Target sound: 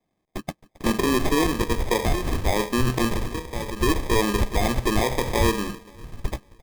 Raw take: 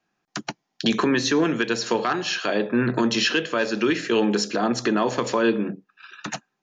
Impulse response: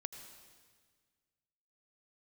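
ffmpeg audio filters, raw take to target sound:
-filter_complex "[0:a]asettb=1/sr,asplit=3[a][b][c];[a]atrim=end=3.164[d];[b]atrim=start=3.16:end=3.8,asetpts=PTS-STARTPTS,afade=t=in:d=0.004:c=qsin,afade=t=out:st=0.636:d=0.004:c=qsin,acrossover=split=530|1700[e][f][g];[e]acompressor=threshold=-29dB:ratio=4[h];[f]acompressor=threshold=-39dB:ratio=4[i];[g]acompressor=threshold=-33dB:ratio=4[j];[h][i][j]amix=inputs=3:normalize=0[k];[c]atrim=start=3.796[l];[d][k]acrossfade=d=0.004:c1=hsin:c2=qsin[m];[m][l]acrossfade=d=0.004:c1=qsin:c2=hsin,asplit=2[n][o];[o]aecho=0:1:268|536|804|1072:0.0708|0.0382|0.0206|0.0111[p];[n][p]amix=inputs=2:normalize=0,acrusher=samples=31:mix=1:aa=0.000001,asubboost=boost=8.5:cutoff=72"

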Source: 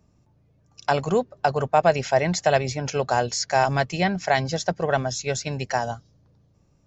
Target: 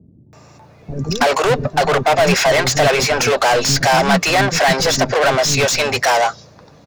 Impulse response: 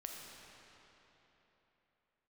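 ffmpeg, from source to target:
-filter_complex "[0:a]bandreject=f=3.1k:w=9.8,asplit=2[a][b];[b]highpass=f=720:p=1,volume=36dB,asoftclip=type=tanh:threshold=-6dB[c];[a][c]amix=inputs=2:normalize=0,lowpass=f=4.1k:p=1,volume=-6dB,acrossover=split=320[d][e];[e]adelay=330[f];[d][f]amix=inputs=2:normalize=0"

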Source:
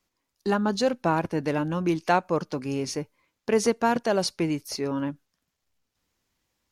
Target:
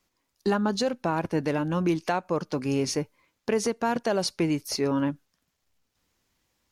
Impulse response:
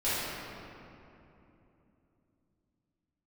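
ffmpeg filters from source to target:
-af "alimiter=limit=-18.5dB:level=0:latency=1:release=308,volume=3dB"

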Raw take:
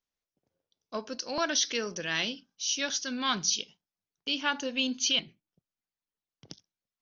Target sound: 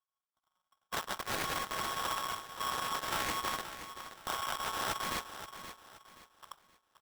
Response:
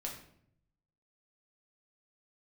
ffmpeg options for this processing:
-filter_complex "[0:a]aeval=exprs='if(lt(val(0),0),0.251*val(0),val(0))':c=same,equalizer=f=94:w=0.34:g=-2.5,aecho=1:1:3.4:0.38,bandreject=f=409.4:t=h:w=4,bandreject=f=818.8:t=h:w=4,dynaudnorm=f=190:g=7:m=16dB,alimiter=limit=-19dB:level=0:latency=1:release=200,acrusher=samples=41:mix=1:aa=0.000001:lfo=1:lforange=41:lforate=0.52,asplit=3[a][b][c];[b]asetrate=33038,aresample=44100,atempo=1.33484,volume=-3dB[d];[c]asetrate=35002,aresample=44100,atempo=1.25992,volume=-15dB[e];[a][d][e]amix=inputs=3:normalize=0,aeval=exprs='0.119*(cos(1*acos(clip(val(0)/0.119,-1,1)))-cos(1*PI/2))+0.0211*(cos(4*acos(clip(val(0)/0.119,-1,1)))-cos(4*PI/2))+0.0422*(cos(8*acos(clip(val(0)/0.119,-1,1)))-cos(8*PI/2))':c=same,aecho=1:1:525|1050|1575|2100:0.282|0.093|0.0307|0.0101,aeval=exprs='val(0)*sgn(sin(2*PI*1100*n/s))':c=same,volume=-7.5dB"

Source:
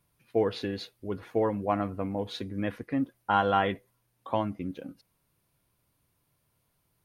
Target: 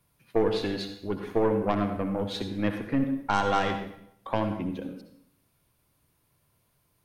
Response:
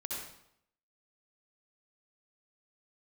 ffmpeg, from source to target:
-filter_complex "[0:a]aeval=exprs='0.299*(cos(1*acos(clip(val(0)/0.299,-1,1)))-cos(1*PI/2))+0.0266*(cos(6*acos(clip(val(0)/0.299,-1,1)))-cos(6*PI/2))':c=same,acrossover=split=370|3000[a][b][c];[b]acompressor=threshold=-30dB:ratio=2[d];[a][d][c]amix=inputs=3:normalize=0,asplit=2[e][f];[1:a]atrim=start_sample=2205[g];[f][g]afir=irnorm=-1:irlink=0,volume=-3.5dB[h];[e][h]amix=inputs=2:normalize=0"

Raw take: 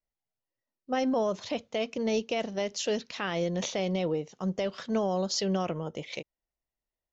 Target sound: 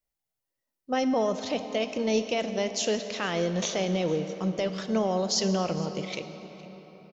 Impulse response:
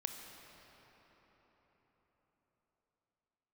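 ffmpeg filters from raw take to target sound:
-filter_complex "[0:a]aecho=1:1:460:0.0891,asplit=2[a][b];[1:a]atrim=start_sample=2205,highshelf=f=5.9k:g=10[c];[b][c]afir=irnorm=-1:irlink=0,volume=2.5dB[d];[a][d]amix=inputs=2:normalize=0,volume=-4.5dB"

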